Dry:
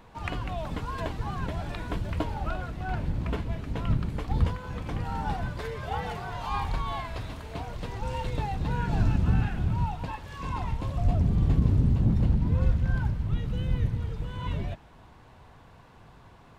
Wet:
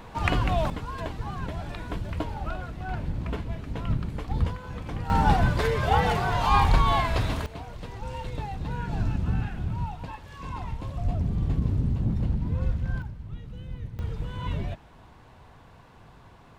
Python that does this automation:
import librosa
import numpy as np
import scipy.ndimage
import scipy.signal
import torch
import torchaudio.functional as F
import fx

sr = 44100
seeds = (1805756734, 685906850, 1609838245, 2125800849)

y = fx.gain(x, sr, db=fx.steps((0.0, 8.5), (0.7, -1.0), (5.1, 10.0), (7.46, -3.0), (13.02, -10.0), (13.99, 1.0)))